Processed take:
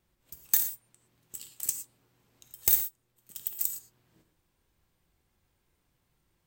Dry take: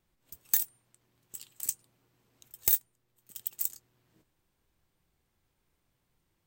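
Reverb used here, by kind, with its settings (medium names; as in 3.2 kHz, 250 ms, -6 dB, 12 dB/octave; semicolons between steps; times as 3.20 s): gated-style reverb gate 140 ms flat, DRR 6.5 dB; trim +1.5 dB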